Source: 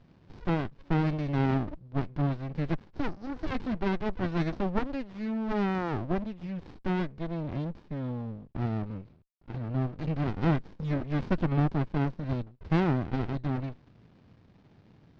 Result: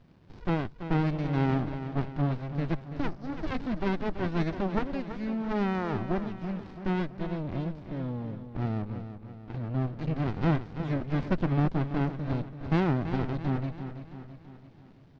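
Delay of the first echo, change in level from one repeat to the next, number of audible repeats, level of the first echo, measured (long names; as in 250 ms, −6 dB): 333 ms, −5.5 dB, 5, −10.5 dB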